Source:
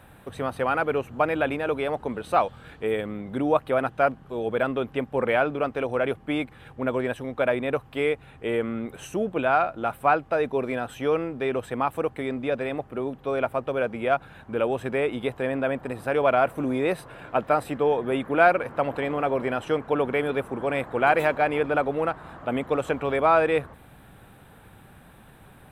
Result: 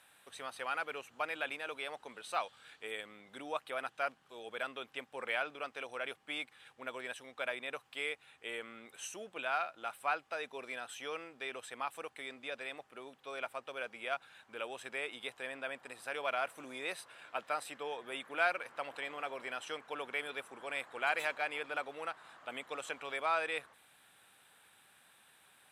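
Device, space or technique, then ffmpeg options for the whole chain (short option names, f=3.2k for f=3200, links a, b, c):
piezo pickup straight into a mixer: -af "lowpass=6.9k,aderivative,volume=3.5dB"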